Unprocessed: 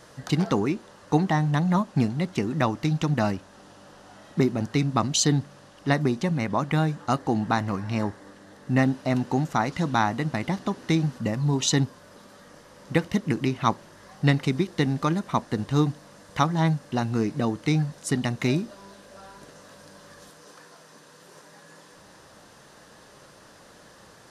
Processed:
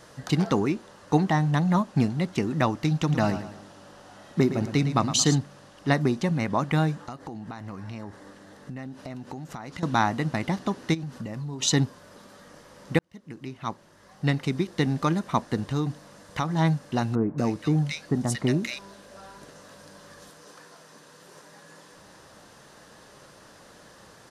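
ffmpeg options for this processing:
-filter_complex "[0:a]asplit=3[a][b][c];[a]afade=t=out:st=3.08:d=0.02[d];[b]aecho=1:1:112|224|336|448:0.282|0.113|0.0451|0.018,afade=t=in:st=3.08:d=0.02,afade=t=out:st=5.36:d=0.02[e];[c]afade=t=in:st=5.36:d=0.02[f];[d][e][f]amix=inputs=3:normalize=0,asettb=1/sr,asplit=3[g][h][i];[g]atrim=end=7.024[j];[h]atrim=start=7.02:end=9.83,asetpts=PTS-STARTPTS,afade=t=in:d=0.004:c=qsin,afade=t=out:st=2.806:d=0.004:c=qsin,acompressor=threshold=-33dB:ratio=16:attack=3.2:release=140:knee=1:detection=peak[k];[i]atrim=start=9.826[l];[j][k]acrossfade=d=0.004:c1=hsin:c2=qsin[m];[m][l]acrossfade=d=0.004:c1=qsin:c2=hsin,asplit=3[n][o][p];[n]afade=t=out:st=10.93:d=0.02[q];[o]acompressor=threshold=-30dB:ratio=16:attack=3.2:release=140:knee=1:detection=peak,afade=t=in:st=10.93:d=0.02,afade=t=out:st=11.61:d=0.02[r];[p]afade=t=in:st=11.61:d=0.02[s];[q][r][s]amix=inputs=3:normalize=0,asettb=1/sr,asplit=3[t][u][v];[t]atrim=end=15.584[w];[u]atrim=start=15.58:end=16.56,asetpts=PTS-STARTPTS,afade=t=in:d=0.004:c=qsin,afade=t=out:st=0.976:d=0.004:c=qsin,acompressor=threshold=-24dB:ratio=2.5:attack=3.2:release=140:knee=1:detection=peak[x];[v]atrim=start=16.556[y];[w][x]acrossfade=d=0.004:c1=hsin:c2=qsin[z];[z][y]acrossfade=d=0.004:c1=qsin:c2=hsin,asettb=1/sr,asplit=3[aa][ab][ac];[aa]atrim=end=17.154[ad];[ab]atrim=start=17.15:end=18.79,asetpts=PTS-STARTPTS,afade=t=in:d=0.004:c=qsin,afade=t=out:st=1.636:d=0.004:c=qsin,acrossover=split=1400[ae][af];[af]adelay=230[ag];[ae][ag]amix=inputs=2:normalize=0,atrim=end_sample=72324[ah];[ac]atrim=start=18.786[ai];[ad][ah]acrossfade=d=0.004:c1=hsin:c2=qsin[aj];[aj][ai]acrossfade=d=0.004:c1=qsin:c2=hsin,asplit=2[ak][al];[ak]atrim=end=12.99,asetpts=PTS-STARTPTS,afade=t=out:st=12.986:d=0.004:c=hsin[am];[al]atrim=start=12.99,asetpts=PTS-STARTPTS,afade=t=in:d=2.02[an];[am][an]concat=n=2:v=0:a=1"

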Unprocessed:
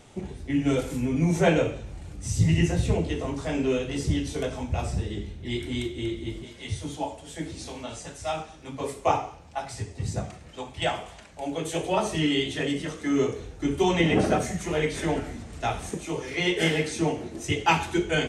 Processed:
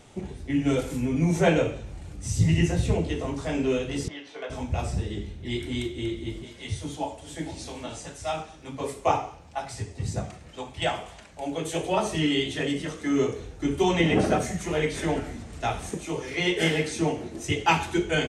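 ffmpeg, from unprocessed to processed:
-filter_complex "[0:a]asettb=1/sr,asplit=3[a][b][c];[a]atrim=end=4.084[d];[b]atrim=start=4.08:end=4.5,asetpts=PTS-STARTPTS,afade=t=in:d=0.004:c=qsin,afade=t=out:st=0.416:d=0.004:c=qsin,highpass=680,lowpass=2.6k[e];[c]atrim=start=4.496[f];[d][e]acrossfade=d=0.004:c1=hsin:c2=qsin[g];[g][f]acrossfade=d=0.004:c1=qsin:c2=hsin,asplit=2[h][i];[i]afade=t=in:st=6.75:d=0.01,afade=t=out:st=7.59:d=0.01,aecho=0:1:460|920|1380:0.199526|0.0698342|0.024442[j];[h][j]amix=inputs=2:normalize=0"

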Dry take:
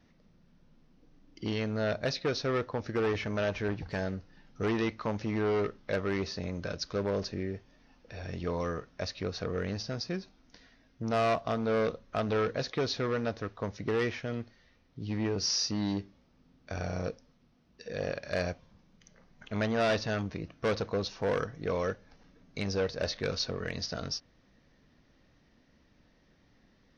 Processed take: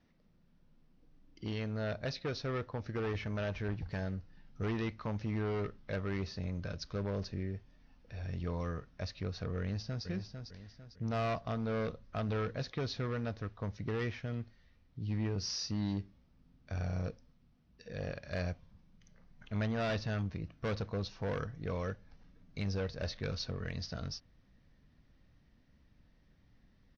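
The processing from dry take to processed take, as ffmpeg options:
-filter_complex "[0:a]asplit=2[a][b];[b]afade=t=in:st=9.6:d=0.01,afade=t=out:st=10.05:d=0.01,aecho=0:1:450|900|1350|1800|2250:0.446684|0.178673|0.0714694|0.0285877|0.0114351[c];[a][c]amix=inputs=2:normalize=0,lowpass=6k,asubboost=boost=2.5:cutoff=200,volume=-6.5dB"

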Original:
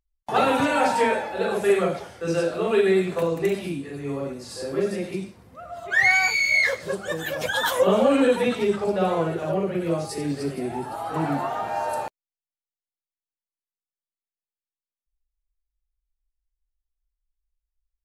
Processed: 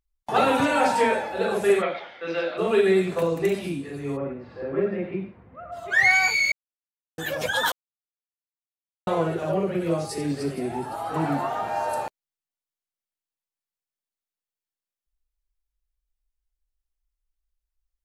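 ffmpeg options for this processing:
-filter_complex "[0:a]asplit=3[a][b][c];[a]afade=t=out:st=1.81:d=0.02[d];[b]highpass=370,equalizer=f=420:t=q:w=4:g=-8,equalizer=f=2.1k:t=q:w=4:g=9,equalizer=f=3.6k:t=q:w=4:g=7,lowpass=f=3.8k:w=0.5412,lowpass=f=3.8k:w=1.3066,afade=t=in:st=1.81:d=0.02,afade=t=out:st=2.57:d=0.02[e];[c]afade=t=in:st=2.57:d=0.02[f];[d][e][f]amix=inputs=3:normalize=0,asplit=3[g][h][i];[g]afade=t=out:st=4.16:d=0.02[j];[h]lowpass=f=2.4k:w=0.5412,lowpass=f=2.4k:w=1.3066,afade=t=in:st=4.16:d=0.02,afade=t=out:st=5.71:d=0.02[k];[i]afade=t=in:st=5.71:d=0.02[l];[j][k][l]amix=inputs=3:normalize=0,asplit=5[m][n][o][p][q];[m]atrim=end=6.52,asetpts=PTS-STARTPTS,afade=t=out:st=6.516:d=0.004:c=hsin[r];[n]atrim=start=6.52:end=7.18,asetpts=PTS-STARTPTS,volume=0[s];[o]atrim=start=7.18:end=7.72,asetpts=PTS-STARTPTS,afade=t=in:d=0.004:c=hsin,afade=t=out:st=0.536:d=0.004:c=hsin[t];[p]atrim=start=7.72:end=9.07,asetpts=PTS-STARTPTS,volume=0[u];[q]atrim=start=9.07,asetpts=PTS-STARTPTS,afade=t=in:d=0.004:c=hsin[v];[r][s][t][u][v]concat=n=5:v=0:a=1"

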